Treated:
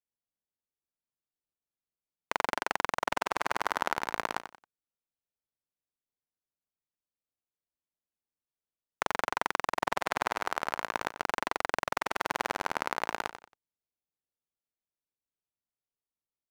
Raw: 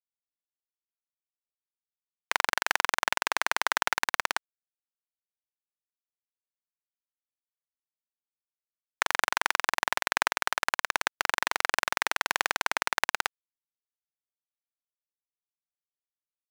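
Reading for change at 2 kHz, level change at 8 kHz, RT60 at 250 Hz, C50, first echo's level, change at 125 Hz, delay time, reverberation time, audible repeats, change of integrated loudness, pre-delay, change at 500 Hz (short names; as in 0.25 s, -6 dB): -7.0 dB, -9.5 dB, none, none, -11.0 dB, n/a, 91 ms, none, 3, -5.0 dB, none, +2.5 dB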